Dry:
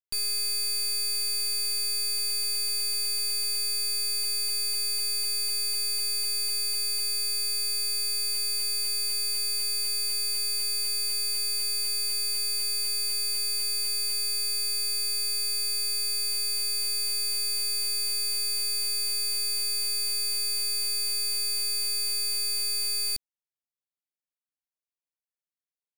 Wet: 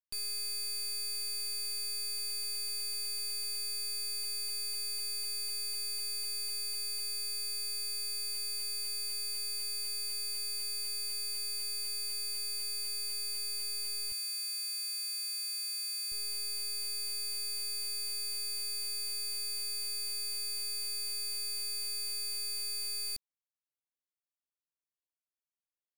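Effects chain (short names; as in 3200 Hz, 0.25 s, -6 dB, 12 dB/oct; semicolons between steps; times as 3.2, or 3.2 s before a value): 14.12–16.12 HPF 1100 Hz 6 dB/oct; gain -8.5 dB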